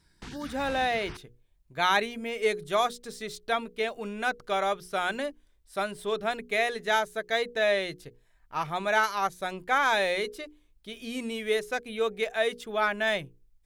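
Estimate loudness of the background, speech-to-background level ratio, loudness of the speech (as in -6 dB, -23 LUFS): -45.0 LUFS, 16.0 dB, -29.0 LUFS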